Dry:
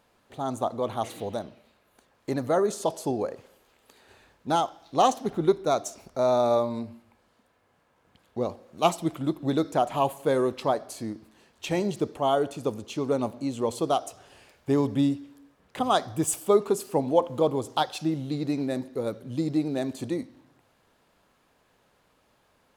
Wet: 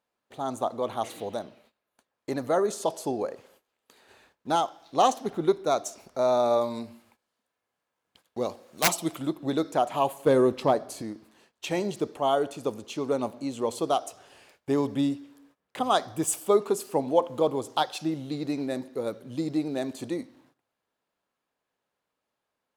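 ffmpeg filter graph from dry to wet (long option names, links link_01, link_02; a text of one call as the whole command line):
ffmpeg -i in.wav -filter_complex "[0:a]asettb=1/sr,asplit=3[link_01][link_02][link_03];[link_01]atrim=end=6.614[link_04];[link_02]atrim=start=6.61:end=9.27,asetpts=PTS-STARTPTS,afade=type=in:duration=0.004:curve=qsin,afade=type=out:start_time=2.656:duration=0.004:curve=qsin,highshelf=frequency=2800:gain=8.5,aeval=exprs='(mod(4.73*val(0)+1,2)-1)/4.73':channel_layout=same[link_05];[link_03]atrim=start=9.266[link_06];[link_04][link_05]acrossfade=duration=0.004:curve1=hsin:curve2=qsin[link_07];[link_07][link_06]acrossfade=duration=0.004:curve1=qsin:curve2=hsin,asettb=1/sr,asplit=3[link_08][link_09][link_10];[link_08]atrim=end=10.264[link_11];[link_09]atrim=start=10.26:end=11.02,asetpts=PTS-STARTPTS,afade=type=in:duration=0.004:curve=qsin,afade=type=out:start_time=0.756:duration=0.004:curve=qsin,lowshelf=frequency=390:gain=10,asoftclip=type=hard:threshold=-11.5dB[link_12];[link_10]atrim=start=11.016[link_13];[link_11][link_12]acrossfade=duration=0.004:curve1=hsin:curve2=qsin[link_14];[link_14][link_13]acrossfade=duration=0.004:curve1=qsin:curve2=hsin,agate=range=-17dB:threshold=-58dB:ratio=16:detection=peak,lowshelf=frequency=130:gain=-12" out.wav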